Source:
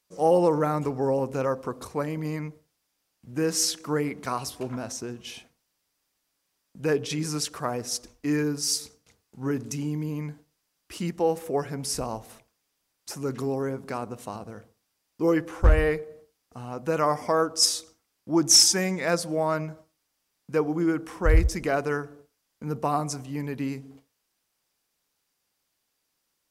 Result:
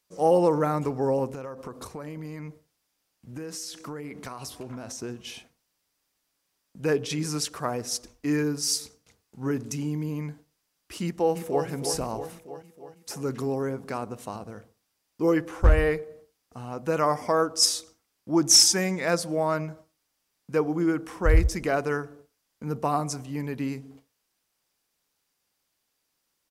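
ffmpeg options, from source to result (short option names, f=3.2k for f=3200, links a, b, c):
-filter_complex "[0:a]asettb=1/sr,asplit=3[a][b][c];[a]atrim=end=1.294[d];[b]atrim=start=1.29:end=4.99,asetpts=PTS-STARTPTS,afade=t=in:d=0.004:c=qsin,afade=t=out:st=3.696:d=0.004:c=qsin,acompressor=threshold=-33dB:ratio=10:attack=3.2:release=140:knee=1:detection=peak[e];[c]atrim=start=4.986[f];[d][e]acrossfade=d=0.004:c1=hsin:c2=qsin[g];[g][f]acrossfade=d=0.004:c1=qsin:c2=hsin,asplit=2[h][i];[i]afade=t=in:st=11.03:d=0.01,afade=t=out:st=11.66:d=0.01,aecho=0:1:320|640|960|1280|1600|1920|2240|2560:0.421697|0.253018|0.151811|0.0910864|0.0546519|0.0327911|0.0196747|0.0118048[j];[h][j]amix=inputs=2:normalize=0"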